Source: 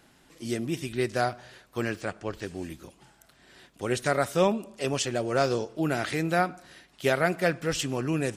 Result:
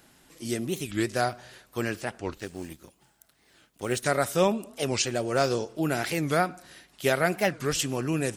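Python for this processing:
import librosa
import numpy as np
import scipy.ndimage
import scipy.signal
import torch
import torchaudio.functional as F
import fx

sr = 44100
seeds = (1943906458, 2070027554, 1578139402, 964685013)

y = fx.law_mismatch(x, sr, coded='A', at=(2.34, 4.03))
y = fx.high_shelf(y, sr, hz=7900.0, db=9.5)
y = fx.record_warp(y, sr, rpm=45.0, depth_cents=250.0)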